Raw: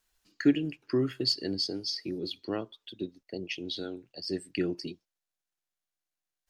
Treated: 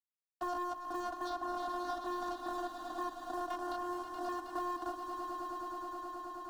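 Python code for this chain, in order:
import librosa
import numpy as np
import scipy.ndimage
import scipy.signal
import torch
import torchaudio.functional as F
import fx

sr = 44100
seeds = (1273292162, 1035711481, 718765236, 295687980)

p1 = fx.spec_steps(x, sr, hold_ms=50)
p2 = fx.rider(p1, sr, range_db=4, speed_s=0.5)
p3 = p1 + (p2 * 10.0 ** (-1.5 / 20.0))
p4 = fx.high_shelf(p3, sr, hz=2600.0, db=-4.5)
p5 = fx.schmitt(p4, sr, flips_db=-33.0)
p6 = fx.vocoder(p5, sr, bands=16, carrier='saw', carrier_hz=355.0)
p7 = fx.env_lowpass(p6, sr, base_hz=510.0, full_db=-25.0)
p8 = fx.leveller(p7, sr, passes=3)
p9 = fx.fixed_phaser(p8, sr, hz=950.0, stages=4)
p10 = fx.echo_swell(p9, sr, ms=106, loudest=5, wet_db=-12.5)
y = fx.band_squash(p10, sr, depth_pct=70)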